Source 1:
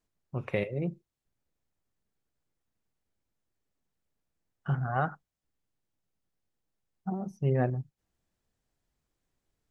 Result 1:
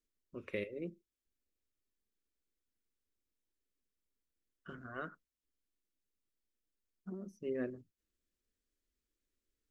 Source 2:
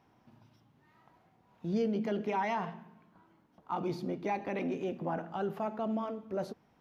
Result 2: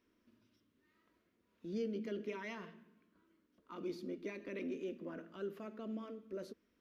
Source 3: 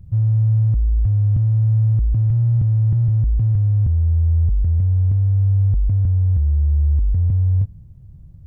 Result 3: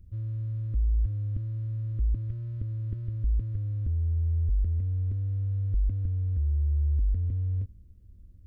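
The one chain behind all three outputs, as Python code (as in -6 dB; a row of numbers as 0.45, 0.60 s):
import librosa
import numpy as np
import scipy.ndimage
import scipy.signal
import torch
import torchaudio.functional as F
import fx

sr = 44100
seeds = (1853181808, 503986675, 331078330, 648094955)

y = fx.fixed_phaser(x, sr, hz=330.0, stages=4)
y = F.gain(torch.from_numpy(y), -5.5).numpy()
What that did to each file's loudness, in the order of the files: -11.5, -9.0, -12.5 LU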